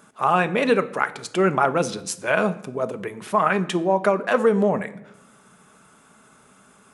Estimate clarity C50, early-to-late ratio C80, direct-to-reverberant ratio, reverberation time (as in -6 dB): 16.0 dB, 19.0 dB, 10.5 dB, 0.90 s